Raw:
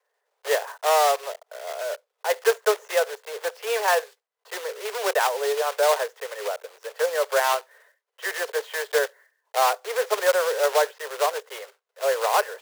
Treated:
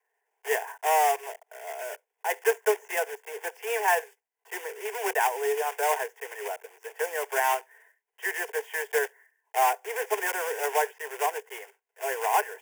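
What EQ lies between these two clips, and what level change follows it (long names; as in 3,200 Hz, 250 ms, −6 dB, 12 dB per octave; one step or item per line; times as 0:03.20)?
phaser with its sweep stopped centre 830 Hz, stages 8
0.0 dB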